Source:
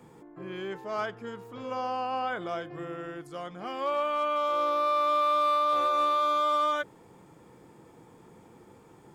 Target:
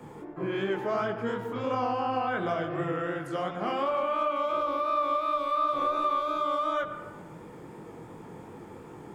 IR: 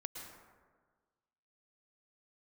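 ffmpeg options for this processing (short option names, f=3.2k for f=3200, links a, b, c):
-filter_complex "[0:a]flanger=delay=18.5:depth=6.9:speed=2.8,acrossover=split=270[a][b];[b]acompressor=threshold=-38dB:ratio=6[c];[a][c]amix=inputs=2:normalize=0,asplit=2[d][e];[1:a]atrim=start_sample=2205,asetrate=57330,aresample=44100,lowpass=3.4k[f];[e][f]afir=irnorm=-1:irlink=0,volume=3dB[g];[d][g]amix=inputs=2:normalize=0,volume=7dB"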